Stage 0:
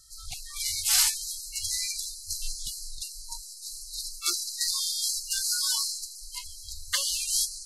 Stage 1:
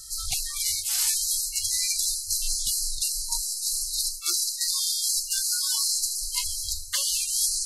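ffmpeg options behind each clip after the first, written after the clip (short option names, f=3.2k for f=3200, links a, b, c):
-af "highshelf=f=4.7k:g=7.5,areverse,acompressor=threshold=-31dB:ratio=10,areverse,volume=8.5dB"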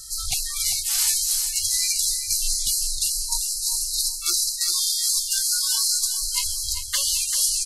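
-af "aecho=1:1:393|786|1179:0.335|0.0904|0.0244,volume=3dB"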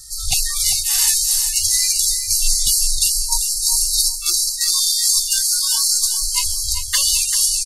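-af "aecho=1:1:1.1:0.61,dynaudnorm=f=190:g=3:m=11.5dB,volume=-1dB"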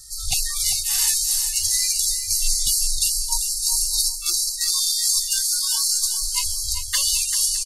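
-af "aecho=1:1:614:0.0891,volume=-4dB"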